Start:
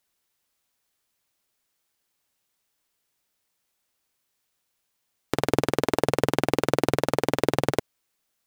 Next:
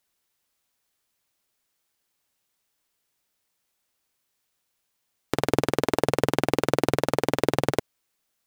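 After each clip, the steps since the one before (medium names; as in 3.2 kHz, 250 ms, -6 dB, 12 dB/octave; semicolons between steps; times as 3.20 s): no audible change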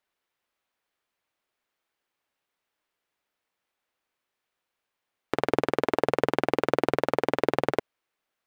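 tone controls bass -8 dB, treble -14 dB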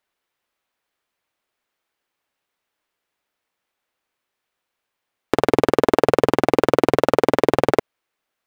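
waveshaping leveller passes 2; peak limiter -9 dBFS, peak gain reduction 4.5 dB; trim +7.5 dB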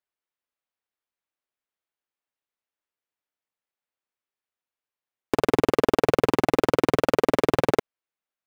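waveshaping leveller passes 3; trim -9 dB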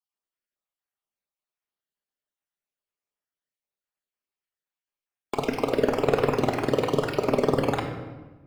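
random holes in the spectrogram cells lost 41%; simulated room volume 880 m³, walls mixed, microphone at 1.3 m; trim -3 dB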